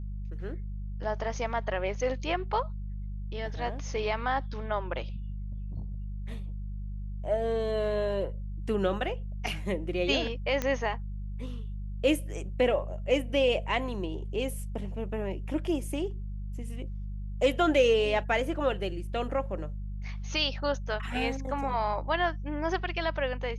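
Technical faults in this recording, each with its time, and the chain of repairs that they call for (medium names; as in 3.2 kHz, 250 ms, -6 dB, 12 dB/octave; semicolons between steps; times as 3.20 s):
hum 50 Hz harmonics 4 -36 dBFS
10.62 s: pop -15 dBFS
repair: de-click; de-hum 50 Hz, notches 4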